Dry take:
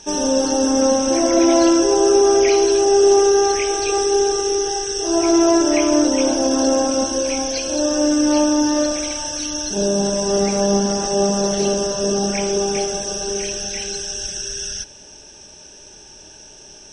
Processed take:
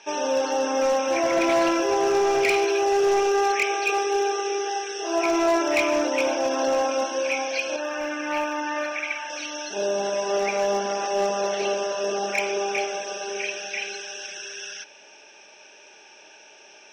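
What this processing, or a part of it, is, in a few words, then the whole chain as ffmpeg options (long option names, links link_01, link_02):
megaphone: -filter_complex "[0:a]highpass=580,lowpass=3000,equalizer=frequency=2400:width_type=o:width=0.31:gain=11,asoftclip=type=hard:threshold=-16.5dB,asettb=1/sr,asplit=3[link_01][link_02][link_03];[link_01]atrim=end=7.764[link_04];[link_02]atrim=start=7.76:end=9.3,asetpts=PTS-STARTPTS,afade=type=in:duration=0.004:curve=qsin,afade=type=out:start_time=1.536:duration=0.004:curve=qsin,equalizer=frequency=250:width_type=o:width=1:gain=-4,equalizer=frequency=500:width_type=o:width=1:gain=-8,equalizer=frequency=2000:width_type=o:width=1:gain=6,equalizer=frequency=4000:width_type=o:width=1:gain=-7,equalizer=frequency=8000:width_type=o:width=1:gain=-8[link_05];[link_03]atrim=start=9.296[link_06];[link_04][link_05]acrossfade=duration=0.004:curve1=hsin:curve2=qsin[link_07];[link_07][link_06]acrossfade=duration=0.004:curve1=qsin:curve2=hsin"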